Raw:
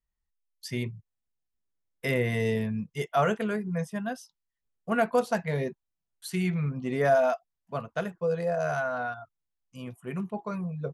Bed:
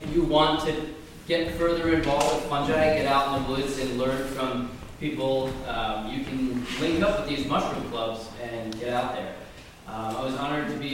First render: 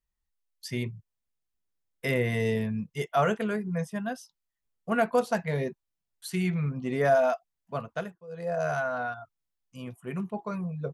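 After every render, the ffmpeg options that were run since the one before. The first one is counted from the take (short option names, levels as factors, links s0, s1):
-filter_complex "[0:a]asplit=3[s0][s1][s2];[s0]atrim=end=8.23,asetpts=PTS-STARTPTS,afade=t=out:st=7.91:d=0.32:silence=0.105925[s3];[s1]atrim=start=8.23:end=8.27,asetpts=PTS-STARTPTS,volume=0.106[s4];[s2]atrim=start=8.27,asetpts=PTS-STARTPTS,afade=t=in:d=0.32:silence=0.105925[s5];[s3][s4][s5]concat=n=3:v=0:a=1"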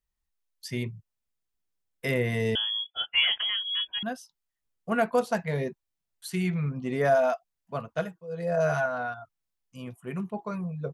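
-filter_complex "[0:a]asettb=1/sr,asplit=3[s0][s1][s2];[s0]atrim=end=2.554[s3];[s1]atrim=start=2.55:end=4.03,asetpts=PTS-STARTPTS,afade=t=in:d=0.004:c=qsin,afade=t=out:st=1.476:d=0.004:c=qsin,lowpass=f=3000:t=q:w=0.5098,lowpass=f=3000:t=q:w=0.6013,lowpass=f=3000:t=q:w=0.9,lowpass=f=3000:t=q:w=2.563,afreqshift=-3500[s4];[s2]atrim=start=4.026[s5];[s3][s4]acrossfade=d=0.004:c1=hsin:c2=qsin[s6];[s6][s5]acrossfade=d=0.004:c1=qsin:c2=hsin,asettb=1/sr,asplit=3[s7][s8][s9];[s7]atrim=end=7.974[s10];[s8]atrim=start=7.97:end=8.86,asetpts=PTS-STARTPTS,afade=t=in:d=0.004:c=qsin,afade=t=out:st=0.886:d=0.004:c=qsin,aecho=1:1:6.3:0.87,atrim=end_sample=39249[s11];[s9]atrim=start=8.856[s12];[s10][s11]acrossfade=d=0.004:c1=hsin:c2=qsin[s13];[s13][s12]acrossfade=d=0.004:c1=qsin:c2=hsin"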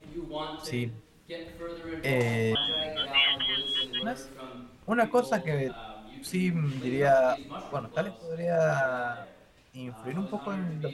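-filter_complex "[1:a]volume=0.178[s0];[0:a][s0]amix=inputs=2:normalize=0"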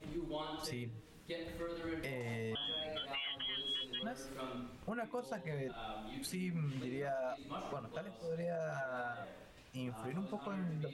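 -af "acompressor=threshold=0.01:ratio=2.5,alimiter=level_in=2.51:limit=0.0631:level=0:latency=1:release=163,volume=0.398"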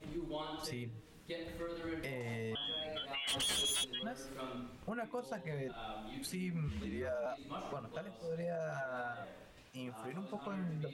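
-filter_complex "[0:a]asplit=3[s0][s1][s2];[s0]afade=t=out:st=3.27:d=0.02[s3];[s1]aeval=exprs='0.0251*sin(PI/2*2.82*val(0)/0.0251)':c=same,afade=t=in:st=3.27:d=0.02,afade=t=out:st=3.83:d=0.02[s4];[s2]afade=t=in:st=3.83:d=0.02[s5];[s3][s4][s5]amix=inputs=3:normalize=0,asettb=1/sr,asplit=3[s6][s7][s8];[s6]atrim=end=6.684[s9];[s7]atrim=start=6.68:end=7.26,asetpts=PTS-STARTPTS,afade=t=in:d=0.004:c=qsin,afade=t=out:st=0.576:d=0.004:c=qsin,afreqshift=-53[s10];[s8]atrim=start=7.256[s11];[s9][s10]acrossfade=d=0.004:c1=hsin:c2=qsin[s12];[s12][s11]acrossfade=d=0.004:c1=qsin:c2=hsin,asettb=1/sr,asplit=3[s13][s14][s15];[s13]atrim=end=9.684[s16];[s14]atrim=start=9.68:end=10.35,asetpts=PTS-STARTPTS,afade=t=in:d=0.004:c=qsin,afade=t=out:st=0.666:d=0.004:c=qsin,highpass=f=220:p=1[s17];[s15]atrim=start=10.346[s18];[s16][s17]acrossfade=d=0.004:c1=hsin:c2=qsin[s19];[s19][s18]acrossfade=d=0.004:c1=qsin:c2=hsin"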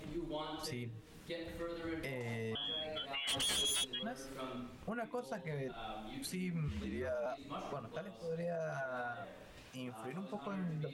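-af "acompressor=mode=upward:threshold=0.00398:ratio=2.5"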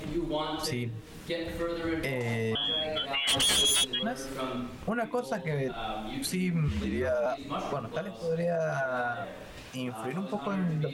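-af "volume=3.35"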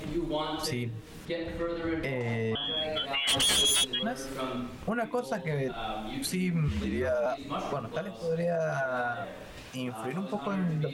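-filter_complex "[0:a]asettb=1/sr,asplit=3[s0][s1][s2];[s0]atrim=end=1.254[s3];[s1]atrim=start=1.25:end=2.77,asetpts=PTS-STARTPTS,afade=t=in:d=0.004:c=qsin,afade=t=out:st=1.516:d=0.004:c=qsin,aemphasis=mode=reproduction:type=50kf[s4];[s2]atrim=start=2.766[s5];[s3][s4]acrossfade=d=0.004:c1=hsin:c2=qsin[s6];[s6][s5]acrossfade=d=0.004:c1=qsin:c2=hsin"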